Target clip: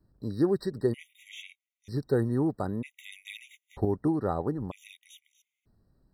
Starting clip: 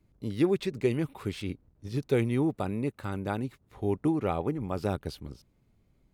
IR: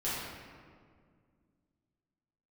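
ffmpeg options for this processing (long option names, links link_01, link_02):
-filter_complex "[0:a]asettb=1/sr,asplit=3[link_01][link_02][link_03];[link_01]atrim=end=2.914[link_04];[link_02]atrim=start=2.91:end=3.85,asetpts=PTS-STARTPTS,afade=type=in:duration=0.004:curve=qsin,afade=type=out:start_time=0.936:duration=0.004:curve=qsin,acontrast=86[link_05];[link_03]atrim=start=3.846[link_06];[link_04][link_05]acrossfade=duration=0.004:curve1=hsin:curve2=qsin[link_07];[link_07][link_06]acrossfade=duration=0.004:curve1=qsin:curve2=hsin,afftfilt=real='re*gt(sin(2*PI*0.53*pts/sr)*(1-2*mod(floor(b*sr/1024/1900),2)),0)':imag='im*gt(sin(2*PI*0.53*pts/sr)*(1-2*mod(floor(b*sr/1024/1900),2)),0)':win_size=1024:overlap=0.75"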